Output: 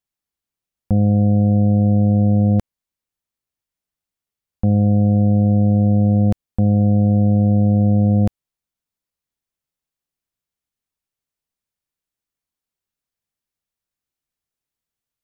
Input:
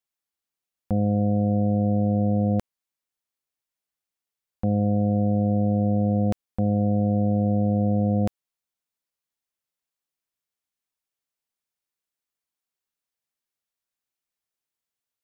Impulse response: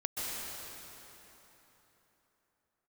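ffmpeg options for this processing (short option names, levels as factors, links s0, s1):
-af "lowshelf=f=230:g=11.5"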